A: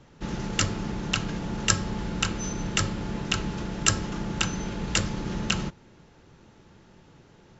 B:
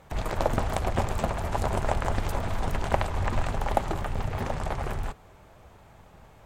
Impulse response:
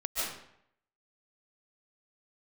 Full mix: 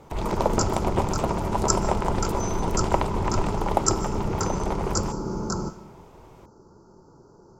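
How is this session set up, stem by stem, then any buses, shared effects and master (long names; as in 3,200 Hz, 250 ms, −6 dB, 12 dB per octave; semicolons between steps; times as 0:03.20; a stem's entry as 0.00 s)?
−0.5 dB, 0.00 s, send −21 dB, Chebyshev band-stop filter 1,400–4,700 Hz, order 4
0.0 dB, 0.00 s, no send, parametric band 1,700 Hz −6.5 dB 0.3 octaves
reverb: on, RT60 0.70 s, pre-delay 105 ms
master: hollow resonant body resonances 390/950 Hz, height 8 dB, ringing for 20 ms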